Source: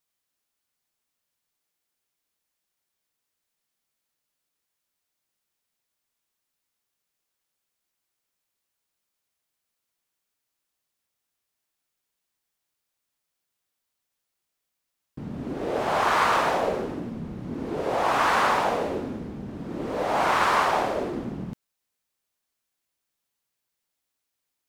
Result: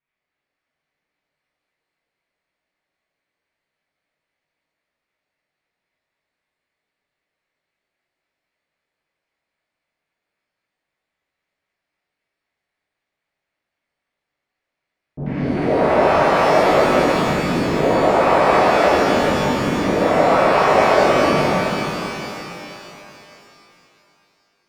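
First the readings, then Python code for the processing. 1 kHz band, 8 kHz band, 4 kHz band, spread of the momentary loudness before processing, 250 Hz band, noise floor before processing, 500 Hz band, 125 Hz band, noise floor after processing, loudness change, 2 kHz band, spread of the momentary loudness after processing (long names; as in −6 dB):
+7.5 dB, +7.0 dB, +8.0 dB, 15 LU, +12.0 dB, −82 dBFS, +13.0 dB, +12.5 dB, −82 dBFS, +9.0 dB, +7.5 dB, 13 LU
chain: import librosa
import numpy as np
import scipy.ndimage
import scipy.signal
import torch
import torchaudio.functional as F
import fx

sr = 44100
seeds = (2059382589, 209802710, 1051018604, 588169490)

p1 = fx.env_lowpass_down(x, sr, base_hz=700.0, full_db=-20.5)
p2 = fx.peak_eq(p1, sr, hz=160.0, db=4.0, octaves=0.33)
p3 = fx.quant_companded(p2, sr, bits=2)
p4 = p2 + (p3 * 10.0 ** (-6.5 / 20.0))
p5 = fx.filter_lfo_lowpass(p4, sr, shape='square', hz=3.8, low_hz=620.0, high_hz=2100.0, q=2.7)
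p6 = fx.rev_shimmer(p5, sr, seeds[0], rt60_s=3.1, semitones=12, shimmer_db=-8, drr_db=-11.5)
y = p6 * 10.0 ** (-6.0 / 20.0)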